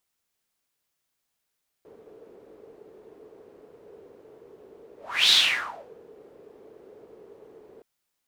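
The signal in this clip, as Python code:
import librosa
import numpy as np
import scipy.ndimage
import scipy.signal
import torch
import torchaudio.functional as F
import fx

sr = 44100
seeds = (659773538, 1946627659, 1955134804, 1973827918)

y = fx.whoosh(sr, seeds[0], length_s=5.97, peak_s=3.45, rise_s=0.35, fall_s=0.68, ends_hz=430.0, peak_hz=3800.0, q=6.4, swell_db=32.5)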